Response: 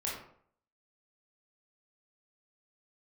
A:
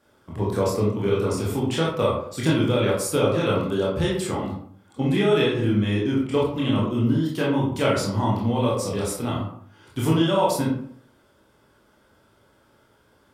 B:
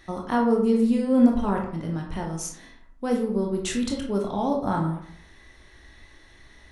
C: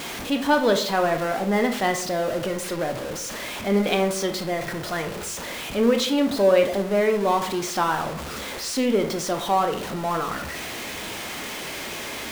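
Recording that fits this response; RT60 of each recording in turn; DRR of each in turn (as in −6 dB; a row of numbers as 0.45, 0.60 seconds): A; 0.60, 0.60, 0.60 seconds; −5.0, 0.5, 5.5 decibels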